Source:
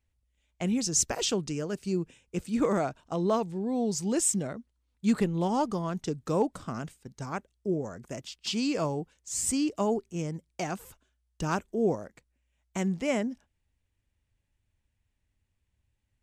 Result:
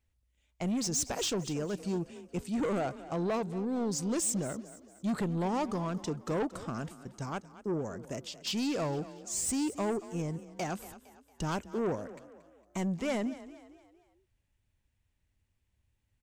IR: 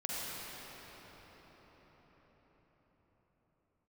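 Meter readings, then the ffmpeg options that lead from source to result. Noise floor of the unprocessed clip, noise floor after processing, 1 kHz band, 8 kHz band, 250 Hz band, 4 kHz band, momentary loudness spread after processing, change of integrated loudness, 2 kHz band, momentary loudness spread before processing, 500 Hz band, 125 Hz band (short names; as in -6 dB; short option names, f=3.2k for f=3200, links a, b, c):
-78 dBFS, -77 dBFS, -3.5 dB, -4.0 dB, -3.5 dB, -3.0 dB, 10 LU, -4.0 dB, -3.0 dB, 12 LU, -4.0 dB, -2.5 dB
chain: -filter_complex "[0:a]asoftclip=type=tanh:threshold=-27dB,asplit=5[a][b][c][d][e];[b]adelay=229,afreqshift=30,volume=-16dB[f];[c]adelay=458,afreqshift=60,volume=-23.3dB[g];[d]adelay=687,afreqshift=90,volume=-30.7dB[h];[e]adelay=916,afreqshift=120,volume=-38dB[i];[a][f][g][h][i]amix=inputs=5:normalize=0"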